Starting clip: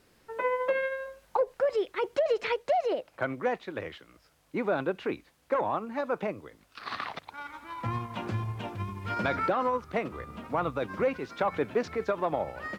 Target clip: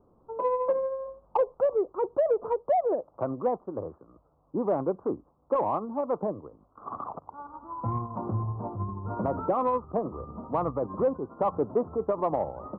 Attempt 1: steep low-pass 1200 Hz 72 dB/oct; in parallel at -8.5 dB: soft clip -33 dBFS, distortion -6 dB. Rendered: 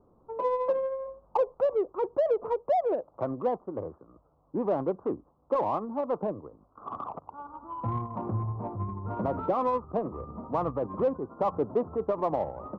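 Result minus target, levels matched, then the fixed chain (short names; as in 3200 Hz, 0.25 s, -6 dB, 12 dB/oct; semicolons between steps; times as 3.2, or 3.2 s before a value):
soft clip: distortion +8 dB
steep low-pass 1200 Hz 72 dB/oct; in parallel at -8.5 dB: soft clip -24 dBFS, distortion -15 dB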